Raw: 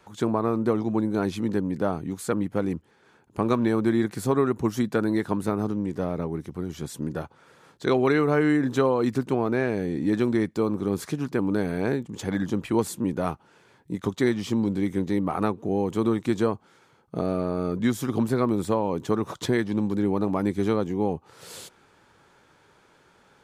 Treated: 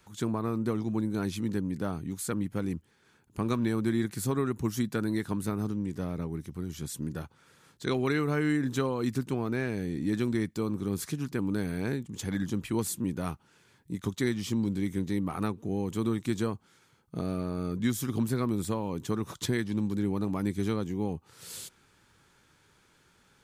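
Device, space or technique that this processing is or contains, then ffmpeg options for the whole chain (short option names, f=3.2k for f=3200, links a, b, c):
smiley-face EQ: -af "lowshelf=f=92:g=5,equalizer=f=640:t=o:w=1.9:g=-8.5,highshelf=f=6.7k:g=7.5,volume=-3dB"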